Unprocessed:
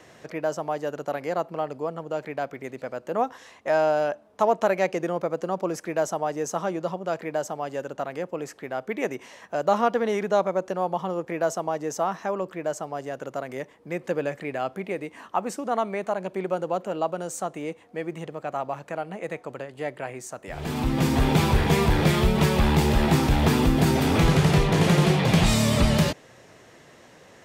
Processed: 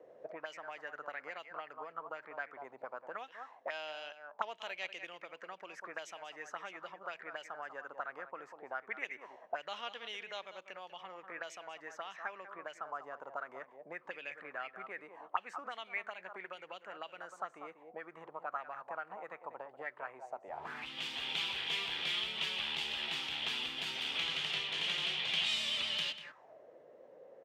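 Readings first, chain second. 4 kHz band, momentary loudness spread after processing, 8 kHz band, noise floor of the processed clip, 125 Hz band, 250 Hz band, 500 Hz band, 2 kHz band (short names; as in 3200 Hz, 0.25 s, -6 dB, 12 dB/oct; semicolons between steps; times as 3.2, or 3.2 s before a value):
-2.0 dB, 15 LU, -18.5 dB, -62 dBFS, -38.0 dB, -31.5 dB, -22.0 dB, -8.0 dB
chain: outdoor echo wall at 33 m, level -12 dB; auto-wah 480–3100 Hz, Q 4.6, up, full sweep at -21.5 dBFS; gain +1.5 dB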